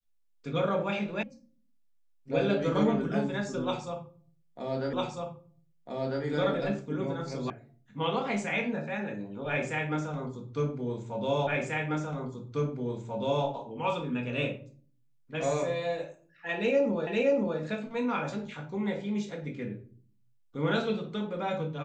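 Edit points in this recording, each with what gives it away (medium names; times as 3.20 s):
1.23 s: sound stops dead
4.93 s: repeat of the last 1.3 s
7.50 s: sound stops dead
11.47 s: repeat of the last 1.99 s
17.07 s: repeat of the last 0.52 s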